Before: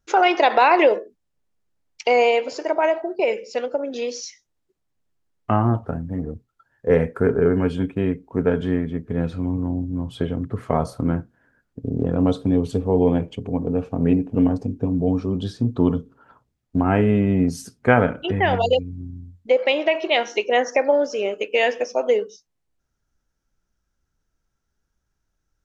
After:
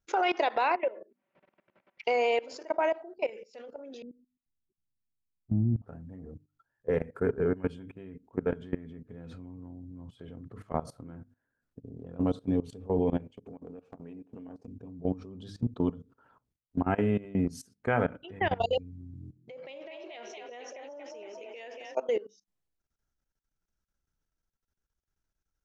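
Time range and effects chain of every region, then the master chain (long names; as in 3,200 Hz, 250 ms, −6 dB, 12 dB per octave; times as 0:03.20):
0:00.75–0:02.04: loudspeaker in its box 420–2,100 Hz, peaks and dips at 430 Hz −10 dB, 800 Hz −8 dB, 1,200 Hz −7 dB, 1,700 Hz −8 dB + comb filter 5.2 ms, depth 58% + upward compression, threshold −27 dBFS
0:04.02–0:05.82: transistor ladder low-pass 330 Hz, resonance 35% + low-shelf EQ 250 Hz +12 dB
0:13.37–0:14.68: high-pass filter 260 Hz 6 dB per octave + downward compressor 8 to 1, threshold −32 dBFS
0:18.90–0:21.95: echo with shifted repeats 232 ms, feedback 44%, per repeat +38 Hz, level −6 dB + downward compressor 3 to 1, threshold −27 dBFS
whole clip: mains-hum notches 50/100/150/200/250/300 Hz; output level in coarse steps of 19 dB; level −6.5 dB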